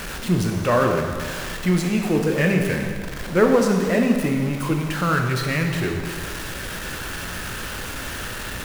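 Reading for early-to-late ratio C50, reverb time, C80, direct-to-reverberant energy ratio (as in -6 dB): 4.0 dB, 1.9 s, 5.5 dB, 2.0 dB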